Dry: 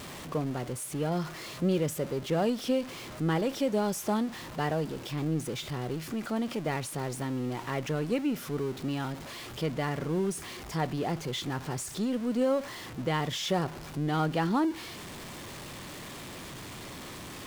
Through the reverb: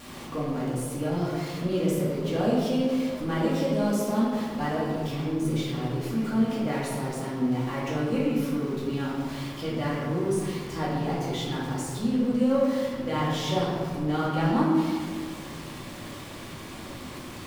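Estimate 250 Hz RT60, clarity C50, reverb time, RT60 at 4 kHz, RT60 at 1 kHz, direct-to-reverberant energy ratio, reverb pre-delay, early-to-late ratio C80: 2.4 s, −0.5 dB, 1.8 s, 0.95 s, 1.7 s, −7.5 dB, 3 ms, 2.0 dB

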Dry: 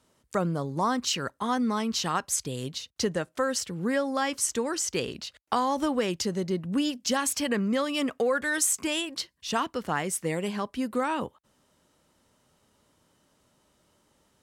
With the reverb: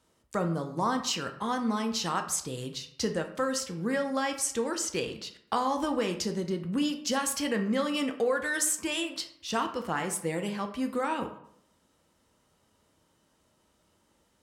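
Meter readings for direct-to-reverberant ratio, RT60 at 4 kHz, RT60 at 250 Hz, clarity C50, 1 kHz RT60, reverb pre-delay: 5.0 dB, 0.45 s, 0.75 s, 10.0 dB, 0.65 s, 4 ms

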